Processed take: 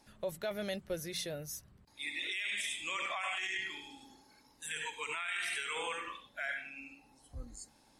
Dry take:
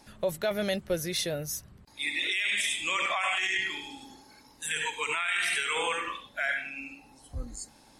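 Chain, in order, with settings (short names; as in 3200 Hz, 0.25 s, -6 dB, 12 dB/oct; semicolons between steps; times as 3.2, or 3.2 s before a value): de-hum 89.11 Hz, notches 2; gain -8.5 dB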